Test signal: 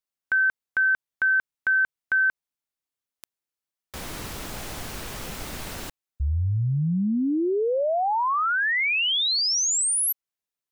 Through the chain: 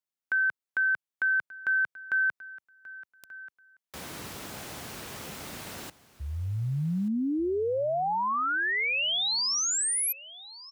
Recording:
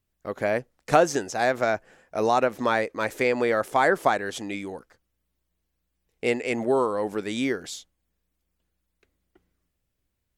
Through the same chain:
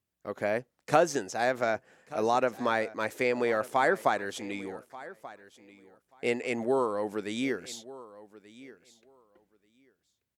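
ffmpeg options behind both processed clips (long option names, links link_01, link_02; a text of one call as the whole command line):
ffmpeg -i in.wav -filter_complex "[0:a]highpass=98,asplit=2[link_01][link_02];[link_02]aecho=0:1:1184|2368:0.119|0.019[link_03];[link_01][link_03]amix=inputs=2:normalize=0,volume=-4.5dB" out.wav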